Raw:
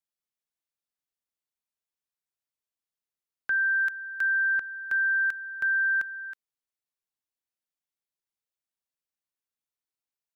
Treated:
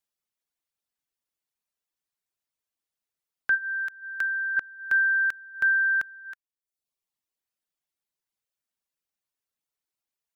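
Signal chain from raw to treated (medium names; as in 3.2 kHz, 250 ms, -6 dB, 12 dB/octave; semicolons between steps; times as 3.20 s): 3.54–4.57 s: compression, threshold -29 dBFS, peak gain reduction 5.5 dB; reverb removal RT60 0.81 s; trim +4.5 dB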